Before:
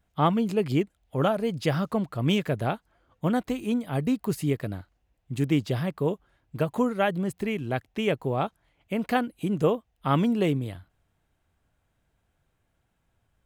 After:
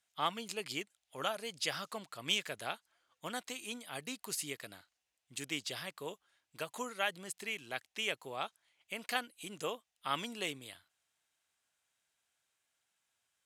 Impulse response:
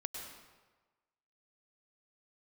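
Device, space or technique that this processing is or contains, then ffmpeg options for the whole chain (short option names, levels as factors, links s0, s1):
piezo pickup straight into a mixer: -af "lowpass=7900,aderivative,volume=2.24"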